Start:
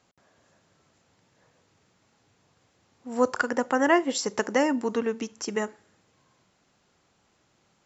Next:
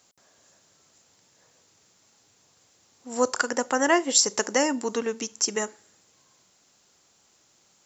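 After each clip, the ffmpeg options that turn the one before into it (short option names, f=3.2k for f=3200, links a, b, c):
-af "bass=f=250:g=-5,treble=f=4k:g=14"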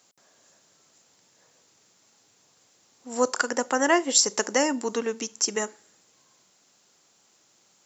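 -af "highpass=130"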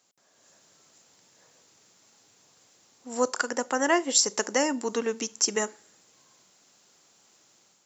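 -af "dynaudnorm=f=160:g=5:m=8dB,volume=-6.5dB"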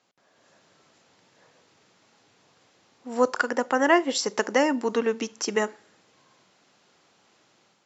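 -af "lowpass=3.4k,volume=4dB"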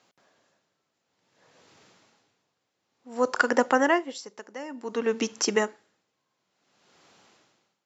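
-af "aeval=exprs='val(0)*pow(10,-22*(0.5-0.5*cos(2*PI*0.56*n/s))/20)':c=same,volume=4dB"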